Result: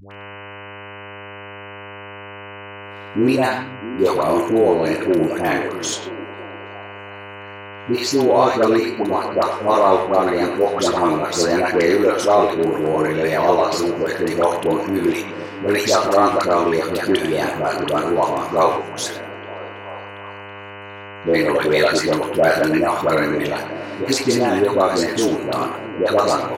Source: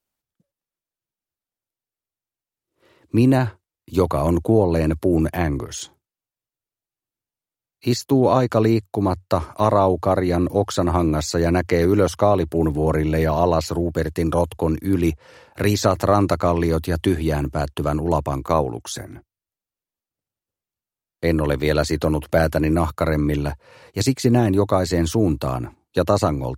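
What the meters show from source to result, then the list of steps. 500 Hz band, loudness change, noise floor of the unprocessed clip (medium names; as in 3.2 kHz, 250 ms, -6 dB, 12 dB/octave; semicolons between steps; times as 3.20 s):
+4.0 dB, +2.0 dB, under -85 dBFS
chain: level rider gain up to 8.5 dB; frequency weighting A; mains buzz 100 Hz, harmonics 30, -39 dBFS -2 dB/octave; phase dispersion highs, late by 114 ms, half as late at 640 Hz; speakerphone echo 100 ms, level -7 dB; dynamic bell 370 Hz, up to +4 dB, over -34 dBFS, Q 2.1; doubling 32 ms -11 dB; on a send: repeats whose band climbs or falls 326 ms, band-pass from 160 Hz, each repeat 0.7 oct, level -9 dB; on the sum: trim +1 dB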